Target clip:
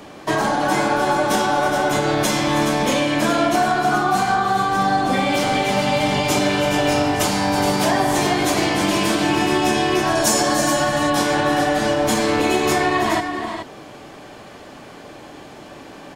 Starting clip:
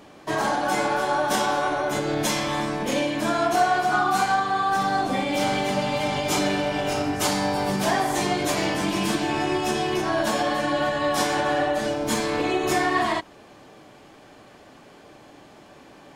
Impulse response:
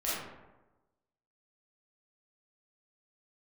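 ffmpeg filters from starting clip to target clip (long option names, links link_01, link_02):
-filter_complex "[0:a]acrossover=split=340|730[link_01][link_02][link_03];[link_01]acompressor=threshold=-31dB:ratio=4[link_04];[link_02]acompressor=threshold=-34dB:ratio=4[link_05];[link_03]acompressor=threshold=-30dB:ratio=4[link_06];[link_04][link_05][link_06]amix=inputs=3:normalize=0,asettb=1/sr,asplit=3[link_07][link_08][link_09];[link_07]atrim=end=10.154[link_10];[link_08]atrim=start=10.15:end=10.68,asetpts=PTS-STARTPTS,afade=type=in:duration=0.004:curve=qsin,afade=type=out:start_time=0.526:duration=0.004:curve=qsin,highshelf=frequency=4500:width_type=q:width=1.5:gain=11[link_11];[link_09]atrim=start=10.676[link_12];[link_10][link_11]acrossfade=duration=0.004:curve1=hsin:curve2=qsin[link_13];[link_13][link_12]acrossfade=duration=0.004:curve1=qsin:curve2=hsin,aecho=1:1:323|422:0.251|0.398,volume=8.5dB"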